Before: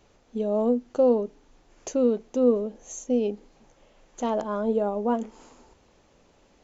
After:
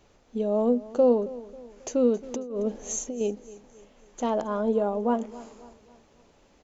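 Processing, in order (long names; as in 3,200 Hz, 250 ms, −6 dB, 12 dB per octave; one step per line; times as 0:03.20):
0:02.23–0:03.21: compressor whose output falls as the input rises −31 dBFS, ratio −1
on a send: repeating echo 271 ms, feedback 45%, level −18.5 dB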